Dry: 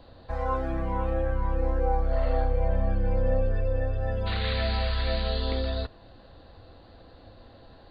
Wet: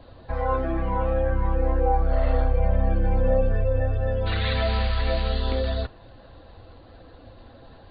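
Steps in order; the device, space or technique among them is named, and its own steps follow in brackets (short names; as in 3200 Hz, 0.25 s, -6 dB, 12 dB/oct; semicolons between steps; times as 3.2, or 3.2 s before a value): clip after many re-uploads (LPF 4100 Hz 24 dB/oct; bin magnitudes rounded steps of 15 dB); gain +4 dB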